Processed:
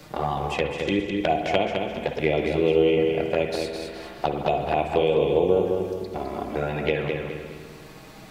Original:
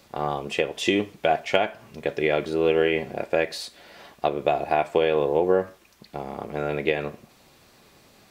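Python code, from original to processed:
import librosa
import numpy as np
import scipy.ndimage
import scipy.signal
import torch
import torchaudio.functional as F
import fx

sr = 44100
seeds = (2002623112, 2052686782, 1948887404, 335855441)

y = fx.level_steps(x, sr, step_db=22, at=(0.72, 1.17))
y = fx.env_flanger(y, sr, rest_ms=6.8, full_db=-17.5)
y = fx.low_shelf(y, sr, hz=130.0, db=11.0)
y = fx.echo_feedback(y, sr, ms=208, feedback_pct=29, wet_db=-6.5)
y = fx.rev_spring(y, sr, rt60_s=1.4, pass_ms=(52, 56), chirp_ms=20, drr_db=6.0)
y = fx.band_squash(y, sr, depth_pct=40)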